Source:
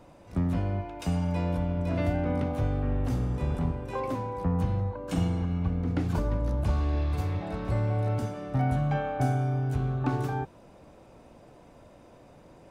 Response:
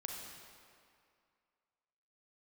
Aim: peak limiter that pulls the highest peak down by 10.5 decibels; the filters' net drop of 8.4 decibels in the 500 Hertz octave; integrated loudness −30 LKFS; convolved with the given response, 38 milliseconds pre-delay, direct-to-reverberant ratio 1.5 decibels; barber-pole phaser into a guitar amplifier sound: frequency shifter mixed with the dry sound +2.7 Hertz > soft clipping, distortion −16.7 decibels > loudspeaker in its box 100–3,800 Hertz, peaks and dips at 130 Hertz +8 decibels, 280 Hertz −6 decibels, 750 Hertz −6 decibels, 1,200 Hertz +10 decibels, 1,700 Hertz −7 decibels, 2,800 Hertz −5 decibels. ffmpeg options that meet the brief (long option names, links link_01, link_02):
-filter_complex "[0:a]equalizer=frequency=500:width_type=o:gain=-9,alimiter=level_in=3dB:limit=-24dB:level=0:latency=1,volume=-3dB,asplit=2[link_01][link_02];[1:a]atrim=start_sample=2205,adelay=38[link_03];[link_02][link_03]afir=irnorm=-1:irlink=0,volume=-0.5dB[link_04];[link_01][link_04]amix=inputs=2:normalize=0,asplit=2[link_05][link_06];[link_06]afreqshift=2.7[link_07];[link_05][link_07]amix=inputs=2:normalize=1,asoftclip=threshold=-28dB,highpass=100,equalizer=frequency=130:width_type=q:width=4:gain=8,equalizer=frequency=280:width_type=q:width=4:gain=-6,equalizer=frequency=750:width_type=q:width=4:gain=-6,equalizer=frequency=1200:width_type=q:width=4:gain=10,equalizer=frequency=1700:width_type=q:width=4:gain=-7,equalizer=frequency=2800:width_type=q:width=4:gain=-5,lowpass=frequency=3800:width=0.5412,lowpass=frequency=3800:width=1.3066,volume=5.5dB"